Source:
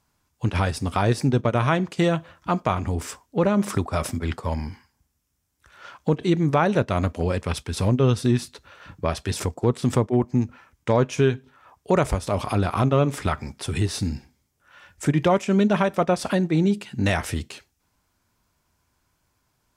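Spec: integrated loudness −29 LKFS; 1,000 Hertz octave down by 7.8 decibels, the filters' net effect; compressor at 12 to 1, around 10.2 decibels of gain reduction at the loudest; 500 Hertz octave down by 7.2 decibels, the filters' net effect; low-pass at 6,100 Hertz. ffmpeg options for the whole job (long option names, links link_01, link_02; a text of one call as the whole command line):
ffmpeg -i in.wav -af "lowpass=6100,equalizer=frequency=500:width_type=o:gain=-7.5,equalizer=frequency=1000:width_type=o:gain=-8,acompressor=threshold=-27dB:ratio=12,volume=4.5dB" out.wav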